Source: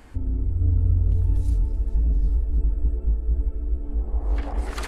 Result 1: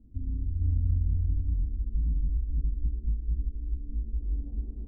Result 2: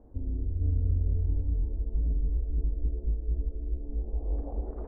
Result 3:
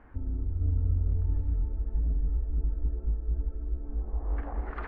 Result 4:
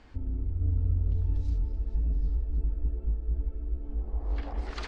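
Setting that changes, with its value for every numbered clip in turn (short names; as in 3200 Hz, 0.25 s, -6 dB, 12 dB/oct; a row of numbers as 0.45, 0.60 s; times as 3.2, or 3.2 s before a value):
ladder low-pass, frequency: 280, 710, 2000, 6100 Hz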